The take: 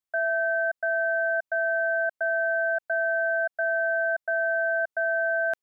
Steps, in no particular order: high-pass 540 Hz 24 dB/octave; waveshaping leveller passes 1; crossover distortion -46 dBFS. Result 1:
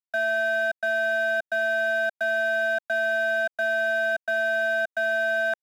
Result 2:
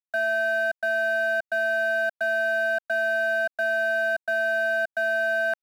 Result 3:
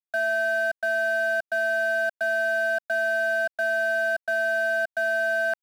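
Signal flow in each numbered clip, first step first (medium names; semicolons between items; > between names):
crossover distortion > high-pass > waveshaping leveller; high-pass > waveshaping leveller > crossover distortion; high-pass > crossover distortion > waveshaping leveller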